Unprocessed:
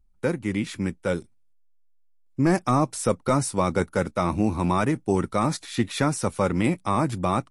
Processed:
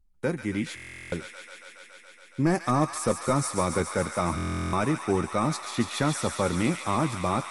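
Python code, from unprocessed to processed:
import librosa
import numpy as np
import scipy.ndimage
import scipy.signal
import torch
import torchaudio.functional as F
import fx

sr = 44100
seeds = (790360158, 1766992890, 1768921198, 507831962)

y = fx.doubler(x, sr, ms=13.0, db=-13)
y = fx.echo_wet_highpass(y, sr, ms=140, feedback_pct=85, hz=1500.0, wet_db=-5.5)
y = fx.buffer_glitch(y, sr, at_s=(0.75, 4.36), block=1024, repeats=15)
y = y * librosa.db_to_amplitude(-3.0)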